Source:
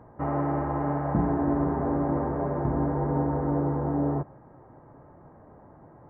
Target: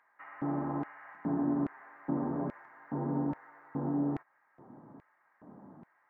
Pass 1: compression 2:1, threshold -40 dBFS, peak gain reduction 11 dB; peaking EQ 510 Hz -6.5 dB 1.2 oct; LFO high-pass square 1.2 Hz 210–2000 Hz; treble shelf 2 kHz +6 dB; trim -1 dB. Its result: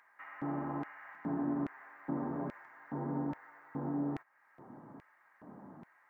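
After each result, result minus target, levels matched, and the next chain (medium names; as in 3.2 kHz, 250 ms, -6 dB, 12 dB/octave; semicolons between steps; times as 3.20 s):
2 kHz band +4.5 dB; compression: peak gain reduction +4 dB
compression 2:1, threshold -40 dBFS, peak gain reduction 11 dB; peaking EQ 510 Hz -6.5 dB 1.2 oct; LFO high-pass square 1.2 Hz 210–2000 Hz; treble shelf 2 kHz -5.5 dB; trim -1 dB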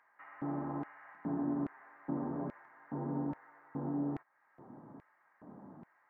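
compression: peak gain reduction +4 dB
compression 2:1, threshold -31.5 dBFS, peak gain reduction 7 dB; peaking EQ 510 Hz -6.5 dB 1.2 oct; LFO high-pass square 1.2 Hz 210–2000 Hz; treble shelf 2 kHz -5.5 dB; trim -1 dB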